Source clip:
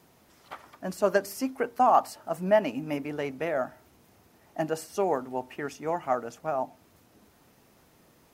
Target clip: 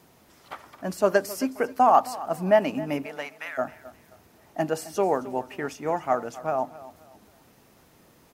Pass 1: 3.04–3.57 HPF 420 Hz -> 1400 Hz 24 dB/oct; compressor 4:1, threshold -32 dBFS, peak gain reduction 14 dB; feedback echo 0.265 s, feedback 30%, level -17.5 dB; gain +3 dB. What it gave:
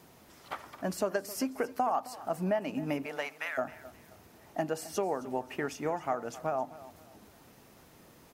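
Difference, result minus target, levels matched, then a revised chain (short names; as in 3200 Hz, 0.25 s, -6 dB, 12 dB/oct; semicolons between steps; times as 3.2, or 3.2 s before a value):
compressor: peak gain reduction +14 dB
3.04–3.57 HPF 420 Hz -> 1400 Hz 24 dB/oct; feedback echo 0.265 s, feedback 30%, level -17.5 dB; gain +3 dB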